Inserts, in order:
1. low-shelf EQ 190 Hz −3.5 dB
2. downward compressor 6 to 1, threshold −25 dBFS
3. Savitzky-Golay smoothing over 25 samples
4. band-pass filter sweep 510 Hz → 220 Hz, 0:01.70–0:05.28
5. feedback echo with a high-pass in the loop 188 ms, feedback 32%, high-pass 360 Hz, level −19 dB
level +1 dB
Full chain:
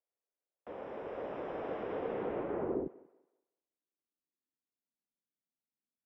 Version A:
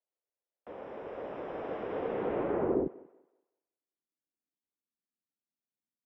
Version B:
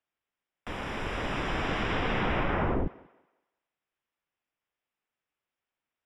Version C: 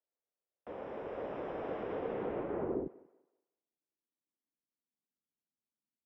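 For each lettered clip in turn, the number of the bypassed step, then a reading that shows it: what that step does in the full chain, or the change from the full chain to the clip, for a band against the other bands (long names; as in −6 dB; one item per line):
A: 2, average gain reduction 2.5 dB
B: 4, 500 Hz band −12.0 dB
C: 1, 125 Hz band +1.5 dB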